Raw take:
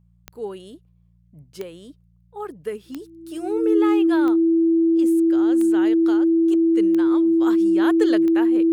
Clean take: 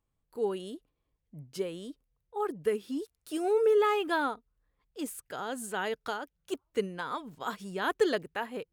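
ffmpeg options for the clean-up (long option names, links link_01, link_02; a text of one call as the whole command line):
ffmpeg -i in.wav -af "adeclick=threshold=4,bandreject=frequency=58:width_type=h:width=4,bandreject=frequency=116:width_type=h:width=4,bandreject=frequency=174:width_type=h:width=4,bandreject=frequency=330:width=30,asetnsamples=nb_out_samples=441:pad=0,asendcmd='7.4 volume volume -3dB',volume=0dB" out.wav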